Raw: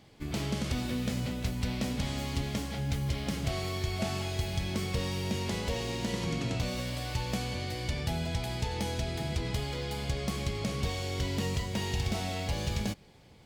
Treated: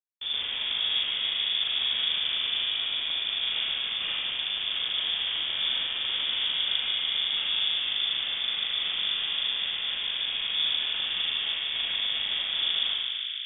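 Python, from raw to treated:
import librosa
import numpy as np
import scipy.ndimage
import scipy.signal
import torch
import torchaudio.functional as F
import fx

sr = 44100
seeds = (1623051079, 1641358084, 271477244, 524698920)

p1 = fx.schmitt(x, sr, flips_db=-33.0)
p2 = p1 + fx.echo_bbd(p1, sr, ms=148, stages=2048, feedback_pct=84, wet_db=-5.5, dry=0)
p3 = fx.rev_spring(p2, sr, rt60_s=1.1, pass_ms=(39,), chirp_ms=50, drr_db=-3.0)
p4 = fx.freq_invert(p3, sr, carrier_hz=3500)
y = F.gain(torch.from_numpy(p4), -2.5).numpy()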